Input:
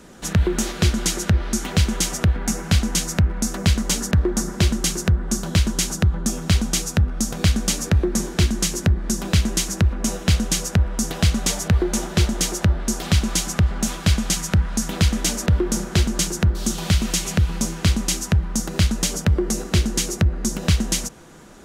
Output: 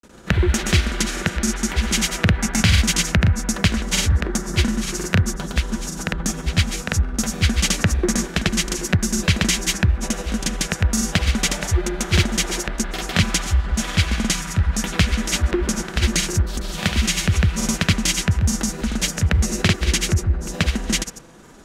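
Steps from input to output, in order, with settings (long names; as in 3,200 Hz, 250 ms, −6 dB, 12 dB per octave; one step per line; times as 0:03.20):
granular cloud 100 ms, grains 20 per second, spray 100 ms, pitch spread up and down by 0 semitones
dynamic equaliser 2,100 Hz, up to +8 dB, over −44 dBFS, Q 0.89
level +1 dB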